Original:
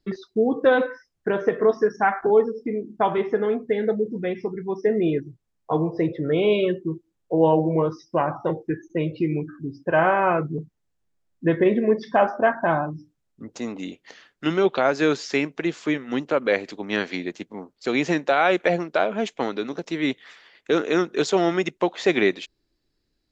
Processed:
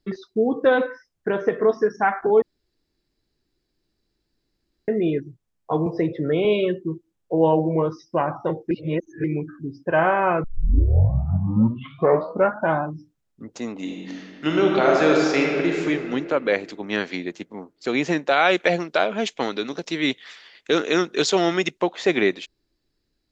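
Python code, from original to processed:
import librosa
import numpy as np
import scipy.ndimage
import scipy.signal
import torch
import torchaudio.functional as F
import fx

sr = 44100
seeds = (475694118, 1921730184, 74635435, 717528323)

y = fx.band_squash(x, sr, depth_pct=40, at=(5.86, 6.45))
y = fx.reverb_throw(y, sr, start_s=13.75, length_s=2.06, rt60_s=2.5, drr_db=-1.0)
y = fx.peak_eq(y, sr, hz=4600.0, db=7.5, octaves=2.1, at=(18.31, 21.8))
y = fx.edit(y, sr, fx.room_tone_fill(start_s=2.42, length_s=2.46),
    fx.reverse_span(start_s=8.71, length_s=0.53),
    fx.tape_start(start_s=10.44, length_s=2.33), tone=tone)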